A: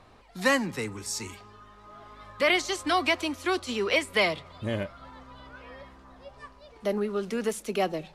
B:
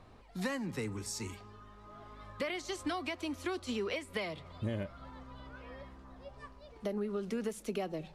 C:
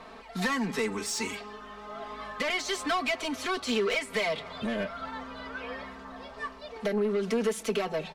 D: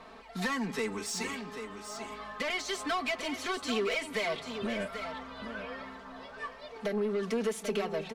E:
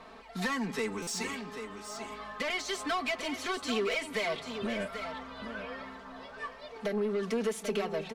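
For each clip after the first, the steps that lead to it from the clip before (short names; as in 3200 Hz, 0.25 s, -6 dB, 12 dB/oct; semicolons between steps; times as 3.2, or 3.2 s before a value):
compressor 6:1, threshold -30 dBFS, peak gain reduction 11.5 dB; low shelf 430 Hz +7 dB; gain -6 dB
overdrive pedal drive 20 dB, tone 4300 Hz, clips at -22.5 dBFS; comb 4.5 ms, depth 88%
echo 0.788 s -9 dB; gain -3.5 dB
stuck buffer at 1.02, samples 256, times 8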